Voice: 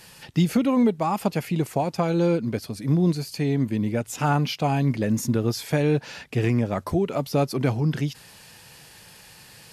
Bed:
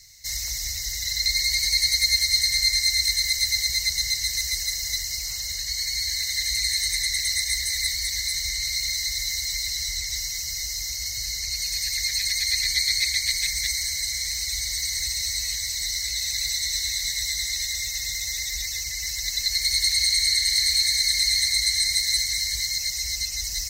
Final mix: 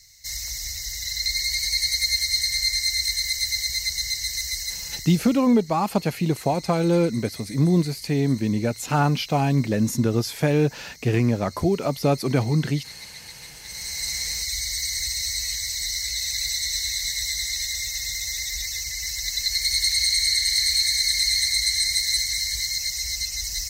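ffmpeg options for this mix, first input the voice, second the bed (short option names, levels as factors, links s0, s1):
-filter_complex "[0:a]adelay=4700,volume=1.19[s0];[1:a]volume=6.31,afade=t=out:st=4.58:d=0.93:silence=0.158489,afade=t=in:st=13.63:d=0.47:silence=0.125893[s1];[s0][s1]amix=inputs=2:normalize=0"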